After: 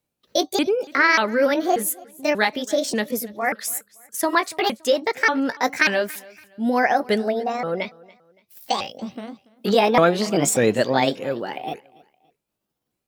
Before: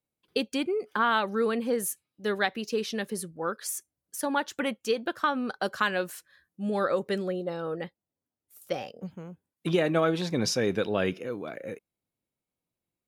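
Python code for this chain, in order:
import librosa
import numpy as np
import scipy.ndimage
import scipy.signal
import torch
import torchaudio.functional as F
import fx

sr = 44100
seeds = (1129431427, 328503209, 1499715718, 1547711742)

y = fx.pitch_ramps(x, sr, semitones=7.0, every_ms=587)
y = fx.spec_box(y, sr, start_s=7.74, length_s=1.8, low_hz=2000.0, high_hz=6300.0, gain_db=6)
y = fx.echo_feedback(y, sr, ms=284, feedback_pct=36, wet_db=-23.0)
y = F.gain(torch.from_numpy(y), 9.0).numpy()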